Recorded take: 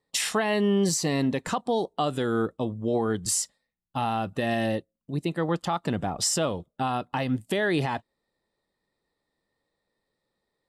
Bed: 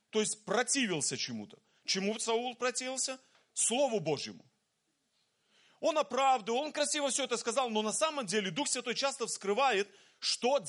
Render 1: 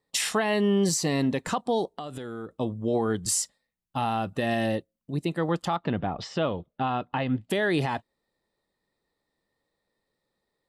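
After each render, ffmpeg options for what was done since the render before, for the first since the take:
-filter_complex "[0:a]asettb=1/sr,asplit=3[a][b][c];[a]atrim=end=1.874[d];[b]atrim=start=1.87:end=2.55,asetpts=PTS-STARTPTS,afade=t=in:d=0.004:c=qsin,afade=t=out:st=0.676:d=0.004:c=qsin,acompressor=threshold=-33dB:ratio=6:attack=3.2:release=140:knee=1:detection=peak[e];[c]atrim=start=2.546[f];[d][e]acrossfade=d=0.004:c1=hsin:c2=qsin[g];[g][f]acrossfade=d=0.004:c1=qsin:c2=hsin,asettb=1/sr,asplit=3[h][i][j];[h]atrim=end=5.764[k];[i]atrim=start=5.76:end=7.5,asetpts=PTS-STARTPTS,afade=t=in:d=0.004:c=qsin,afade=t=out:st=1.736:d=0.004:c=qsin,lowpass=f=3.7k:w=0.5412,lowpass=f=3.7k:w=1.3066[l];[j]atrim=start=7.496[m];[k][l]acrossfade=d=0.004:c1=hsin:c2=qsin[n];[n][m]acrossfade=d=0.004:c1=qsin:c2=hsin"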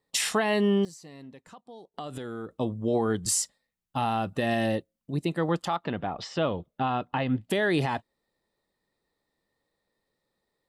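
-filter_complex "[0:a]asettb=1/sr,asplit=3[a][b][c];[a]atrim=end=5.624[d];[b]atrim=start=5.62:end=6.38,asetpts=PTS-STARTPTS,afade=t=in:d=0.004:c=qsin,afade=t=out:st=0.756:d=0.004:c=qsin,lowshelf=f=300:g=-7[e];[c]atrim=start=6.376[f];[d][e]acrossfade=d=0.004:c1=hsin:c2=qsin[g];[g][f]acrossfade=d=0.004:c1=qsin:c2=hsin,asplit=3[h][i][j];[h]atrim=end=0.85,asetpts=PTS-STARTPTS,afade=t=out:st=0.66:d=0.19:c=log:silence=0.0891251[k];[i]atrim=start=0.85:end=1.94,asetpts=PTS-STARTPTS,volume=-21dB[l];[j]atrim=start=1.94,asetpts=PTS-STARTPTS,afade=t=in:d=0.19:c=log:silence=0.0891251[m];[k][l][m]concat=n=3:v=0:a=1"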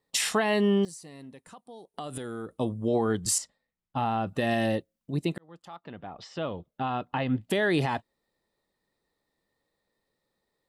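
-filter_complex "[0:a]asettb=1/sr,asplit=3[a][b][c];[a]atrim=end=0.884[d];[b]atrim=start=0.88:end=2.88,asetpts=PTS-STARTPTS,afade=t=in:d=0.004:c=qsin,afade=t=out:st=1.996:d=0.004:c=qsin,equalizer=f=9.6k:t=o:w=0.31:g=14.5[e];[c]atrim=start=2.876[f];[d][e]acrossfade=d=0.004:c1=hsin:c2=qsin[g];[g][f]acrossfade=d=0.004:c1=qsin:c2=hsin,asettb=1/sr,asplit=3[h][i][j];[h]atrim=end=3.384[k];[i]atrim=start=3.38:end=4.27,asetpts=PTS-STARTPTS,afade=t=in:d=0.004:c=qsin,afade=t=out:st=0.886:d=0.004:c=qsin,aemphasis=mode=reproduction:type=75kf[l];[j]atrim=start=4.266[m];[k][l]acrossfade=d=0.004:c1=hsin:c2=qsin[n];[n][m]acrossfade=d=0.004:c1=qsin:c2=hsin,asplit=2[o][p];[o]atrim=end=5.38,asetpts=PTS-STARTPTS,afade=t=out:st=5.376:d=0.004:c=hsin[q];[p]atrim=start=5.38,asetpts=PTS-STARTPTS,afade=t=in:d=2.04[r];[q][r]concat=n=2:v=0:a=1"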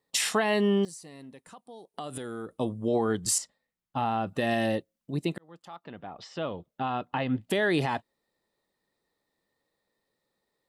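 -af "lowshelf=f=89:g=-7.5"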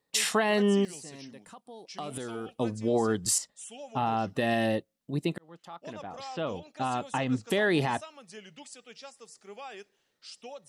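-filter_complex "[1:a]volume=-14.5dB[a];[0:a][a]amix=inputs=2:normalize=0"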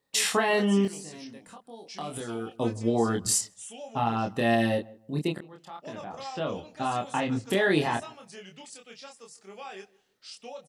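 -filter_complex "[0:a]asplit=2[a][b];[b]adelay=26,volume=-3dB[c];[a][c]amix=inputs=2:normalize=0,asplit=2[d][e];[e]adelay=157,lowpass=f=1.2k:p=1,volume=-21dB,asplit=2[f][g];[g]adelay=157,lowpass=f=1.2k:p=1,volume=0.25[h];[d][f][h]amix=inputs=3:normalize=0"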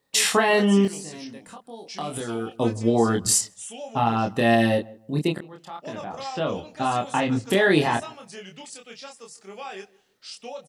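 -af "volume=5dB"

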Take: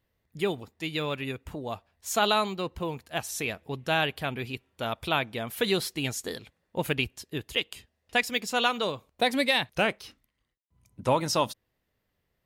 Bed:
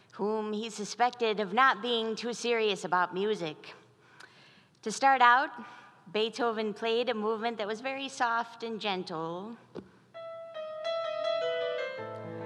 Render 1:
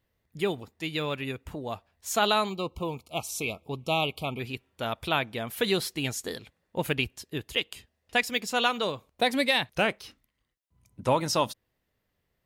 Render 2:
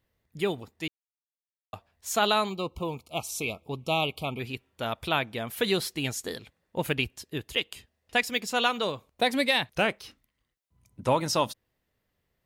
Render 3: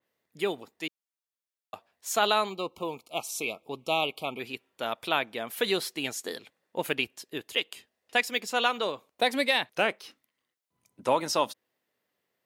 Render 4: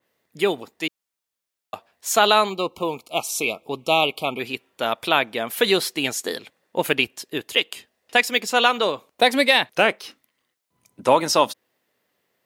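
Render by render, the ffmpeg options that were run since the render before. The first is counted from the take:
-filter_complex "[0:a]asplit=3[a][b][c];[a]afade=t=out:st=2.49:d=0.02[d];[b]asuperstop=centerf=1700:order=20:qfactor=2.1,afade=t=in:st=2.49:d=0.02,afade=t=out:st=4.39:d=0.02[e];[c]afade=t=in:st=4.39:d=0.02[f];[d][e][f]amix=inputs=3:normalize=0"
-filter_complex "[0:a]asplit=3[a][b][c];[a]atrim=end=0.88,asetpts=PTS-STARTPTS,afade=t=out:st=0.876:d=0.004:c=hsin[d];[b]atrim=start=0.88:end=1.73,asetpts=PTS-STARTPTS,volume=0[e];[c]atrim=start=1.73,asetpts=PTS-STARTPTS,afade=t=in:d=0.004:c=hsin[f];[d][e][f]concat=n=3:v=0:a=1"
-af "highpass=280,adynamicequalizer=threshold=0.0141:dfrequency=3200:dqfactor=0.7:tfrequency=3200:tqfactor=0.7:attack=5:release=100:ratio=0.375:range=2:mode=cutabove:tftype=highshelf"
-af "volume=8.5dB,alimiter=limit=-3dB:level=0:latency=1"

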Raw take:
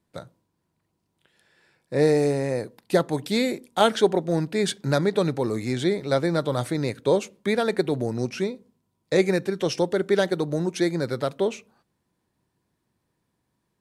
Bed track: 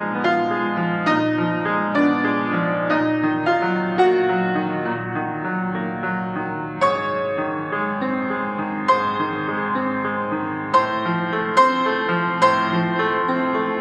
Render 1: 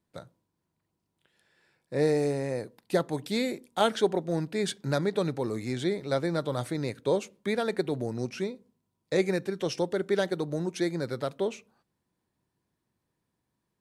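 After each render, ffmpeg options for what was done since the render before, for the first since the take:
-af "volume=-5.5dB"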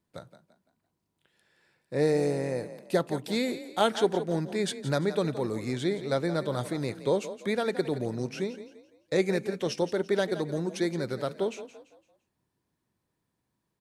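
-filter_complex "[0:a]asplit=5[a][b][c][d][e];[b]adelay=170,afreqshift=32,volume=-13dB[f];[c]adelay=340,afreqshift=64,volume=-21.9dB[g];[d]adelay=510,afreqshift=96,volume=-30.7dB[h];[e]adelay=680,afreqshift=128,volume=-39.6dB[i];[a][f][g][h][i]amix=inputs=5:normalize=0"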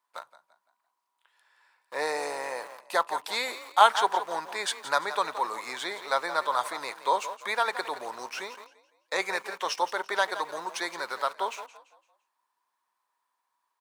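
-filter_complex "[0:a]asplit=2[a][b];[b]aeval=exprs='val(0)*gte(abs(val(0)),0.00944)':c=same,volume=-5.5dB[c];[a][c]amix=inputs=2:normalize=0,highpass=f=1k:t=q:w=4.2"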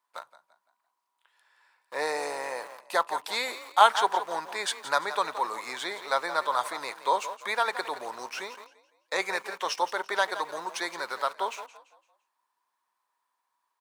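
-af anull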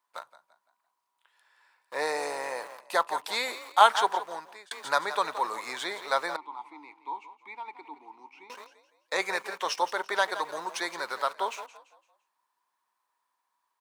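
-filter_complex "[0:a]asettb=1/sr,asplit=3[a][b][c];[a]atrim=end=6.364[d];[b]atrim=start=6.36:end=8.5,asetpts=PTS-STARTPTS,afade=t=in:d=0.004:c=qsin,afade=t=out:st=2.136:d=0.004:c=qsin,asplit=3[e][f][g];[e]bandpass=f=300:t=q:w=8,volume=0dB[h];[f]bandpass=f=870:t=q:w=8,volume=-6dB[i];[g]bandpass=f=2.24k:t=q:w=8,volume=-9dB[j];[h][i][j]amix=inputs=3:normalize=0[k];[c]atrim=start=8.496[l];[d][k]acrossfade=d=0.004:c1=hsin:c2=qsin[m];[m][l]acrossfade=d=0.004:c1=qsin:c2=hsin,asplit=2[n][o];[n]atrim=end=4.71,asetpts=PTS-STARTPTS,afade=t=out:st=4:d=0.71[p];[o]atrim=start=4.71,asetpts=PTS-STARTPTS,afade=t=in:d=0.004:c=hsin[q];[p][q]concat=n=2:v=0:a=1"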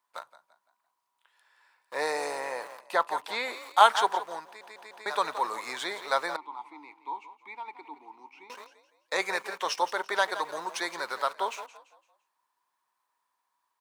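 -filter_complex "[0:a]asettb=1/sr,asplit=3[a][b][c];[a]atrim=end=2.404[d];[b]atrim=start=2.4:end=3.63,asetpts=PTS-STARTPTS,afade=t=in:d=0.004:c=qsin,afade=t=out:st=1.226:d=0.004:c=qsin,acrossover=split=3600[e][f];[f]acompressor=threshold=-46dB:ratio=4:attack=1:release=60[g];[e][g]amix=inputs=2:normalize=0[h];[c]atrim=start=3.626[i];[d][h]acrossfade=d=0.004:c1=hsin:c2=qsin[j];[j][i]acrossfade=d=0.004:c1=qsin:c2=hsin,asplit=5[k][l][m][n][o];[k]atrim=end=4.612[p];[l]atrim=start=4.458:end=4.612[q];[m]atrim=start=4.458:end=4.612[r];[n]atrim=start=4.458:end=4.612[s];[o]atrim=start=5.058[t];[p][q]acrossfade=d=0.004:c1=hsin:c2=hsin[u];[u][r]acrossfade=d=0.004:c1=hsin:c2=hsin[v];[v][s]acrossfade=d=0.004:c1=hsin:c2=hsin[w];[w][t]acrossfade=d=0.004:c1=hsin:c2=hsin"

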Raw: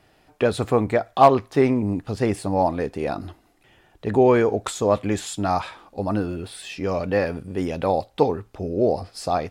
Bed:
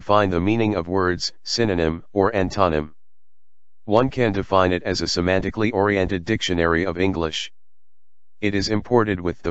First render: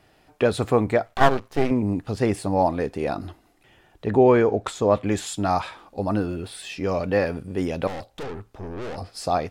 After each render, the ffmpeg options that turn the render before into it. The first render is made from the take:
-filter_complex "[0:a]asettb=1/sr,asplit=3[a][b][c];[a]atrim=end=1.064[d];[b]atrim=start=1.06:end=1.71,asetpts=PTS-STARTPTS,afade=t=in:d=0.004:c=qsin,afade=t=out:st=0.646:d=0.004:c=qsin,aeval=exprs='max(val(0),0)':c=same[e];[c]atrim=start=1.706[f];[d][e]acrossfade=d=0.004:c1=hsin:c2=qsin[g];[g][f]acrossfade=d=0.004:c1=qsin:c2=hsin,asettb=1/sr,asplit=3[h][i][j];[h]atrim=end=4.064[k];[i]atrim=start=4.06:end=5.07,asetpts=PTS-STARTPTS,afade=t=in:d=0.004:c=qsin,afade=t=out:st=1.006:d=0.004:c=qsin,aemphasis=mode=reproduction:type=cd[l];[j]atrim=start=5.066[m];[k][l]acrossfade=d=0.004:c1=hsin:c2=qsin[n];[n][m]acrossfade=d=0.004:c1=qsin:c2=hsin,asettb=1/sr,asplit=3[o][p][q];[o]atrim=end=7.874[r];[p]atrim=start=7.87:end=8.98,asetpts=PTS-STARTPTS,afade=t=in:d=0.004:c=qsin,afade=t=out:st=1.106:d=0.004:c=qsin,aeval=exprs='(tanh(35.5*val(0)+0.5)-tanh(0.5))/35.5':c=same[s];[q]atrim=start=8.976[t];[r][s]acrossfade=d=0.004:c1=hsin:c2=qsin[u];[u][t]acrossfade=d=0.004:c1=qsin:c2=hsin"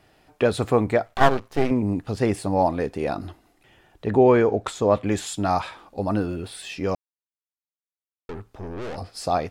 -filter_complex "[0:a]asplit=3[a][b][c];[a]atrim=end=6.95,asetpts=PTS-STARTPTS,afade=t=out:st=6.946:d=0.004:c=hsin[d];[b]atrim=start=6.95:end=8.29,asetpts=PTS-STARTPTS,volume=0[e];[c]atrim=start=8.29,asetpts=PTS-STARTPTS,afade=t=in:d=0.004:c=hsin[f];[d][e][f]concat=n=3:v=0:a=1"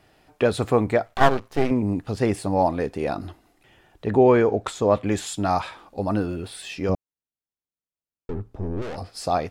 -filter_complex "[0:a]asettb=1/sr,asplit=3[a][b][c];[a]atrim=end=6.894[d];[b]atrim=start=6.89:end=8.82,asetpts=PTS-STARTPTS,afade=t=in:d=0.004:c=qsin,afade=t=out:st=1.926:d=0.004:c=qsin,tiltshelf=f=660:g=8[e];[c]atrim=start=8.816[f];[d][e]acrossfade=d=0.004:c1=hsin:c2=qsin[g];[g][f]acrossfade=d=0.004:c1=qsin:c2=hsin"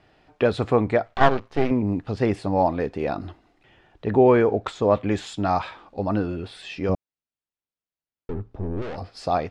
-af "lowpass=4.4k"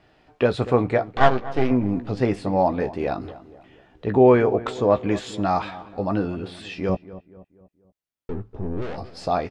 -filter_complex "[0:a]asplit=2[a][b];[b]adelay=16,volume=-9.5dB[c];[a][c]amix=inputs=2:normalize=0,asplit=2[d][e];[e]adelay=239,lowpass=f=1.6k:p=1,volume=-16dB,asplit=2[f][g];[g]adelay=239,lowpass=f=1.6k:p=1,volume=0.46,asplit=2[h][i];[i]adelay=239,lowpass=f=1.6k:p=1,volume=0.46,asplit=2[j][k];[k]adelay=239,lowpass=f=1.6k:p=1,volume=0.46[l];[d][f][h][j][l]amix=inputs=5:normalize=0"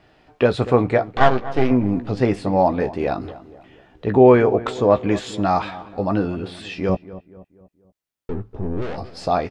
-af "volume=3dB,alimiter=limit=-1dB:level=0:latency=1"

